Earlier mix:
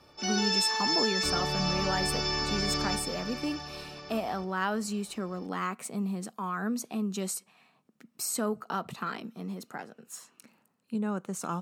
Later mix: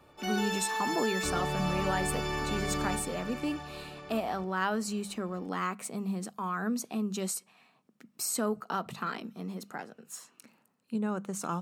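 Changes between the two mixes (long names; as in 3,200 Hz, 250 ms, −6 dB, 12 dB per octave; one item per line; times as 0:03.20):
speech: add mains-hum notches 50/100/150/200 Hz
background: remove low-pass with resonance 5,400 Hz, resonance Q 8.5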